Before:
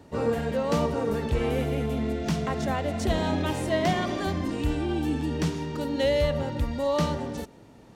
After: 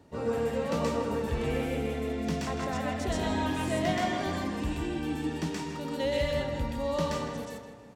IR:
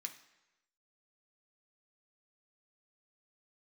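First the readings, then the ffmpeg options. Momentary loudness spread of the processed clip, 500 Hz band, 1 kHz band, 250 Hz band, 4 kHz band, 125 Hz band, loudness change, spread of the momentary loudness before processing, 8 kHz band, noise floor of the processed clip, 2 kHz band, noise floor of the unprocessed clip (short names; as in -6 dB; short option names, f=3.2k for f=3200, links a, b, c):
5 LU, -4.0 dB, -2.5 dB, -3.5 dB, -3.0 dB, -5.5 dB, -4.0 dB, 4 LU, -1.5 dB, -46 dBFS, -1.5 dB, -51 dBFS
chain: -filter_complex "[0:a]asplit=2[a][b];[b]adelay=160,lowpass=f=3.6k:p=1,volume=-8dB,asplit=2[c][d];[d]adelay=160,lowpass=f=3.6k:p=1,volume=0.52,asplit=2[e][f];[f]adelay=160,lowpass=f=3.6k:p=1,volume=0.52,asplit=2[g][h];[h]adelay=160,lowpass=f=3.6k:p=1,volume=0.52,asplit=2[i][j];[j]adelay=160,lowpass=f=3.6k:p=1,volume=0.52,asplit=2[k][l];[l]adelay=160,lowpass=f=3.6k:p=1,volume=0.52[m];[a][c][e][g][i][k][m]amix=inputs=7:normalize=0,asplit=2[n][o];[1:a]atrim=start_sample=2205,adelay=126[p];[o][p]afir=irnorm=-1:irlink=0,volume=4.5dB[q];[n][q]amix=inputs=2:normalize=0,volume=-6.5dB"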